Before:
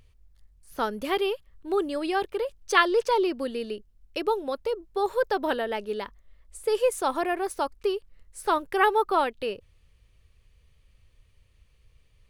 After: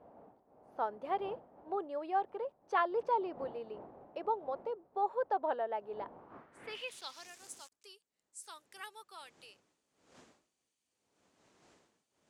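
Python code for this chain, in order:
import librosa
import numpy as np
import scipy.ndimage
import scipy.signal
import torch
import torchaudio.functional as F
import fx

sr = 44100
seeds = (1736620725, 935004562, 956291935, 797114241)

y = fx.dmg_wind(x, sr, seeds[0], corner_hz=300.0, level_db=-35.0)
y = fx.sample_gate(y, sr, floor_db=-36.0, at=(6.7, 7.72))
y = fx.filter_sweep_bandpass(y, sr, from_hz=760.0, to_hz=7300.0, start_s=6.1, end_s=7.35, q=2.4)
y = F.gain(torch.from_numpy(y), -2.5).numpy()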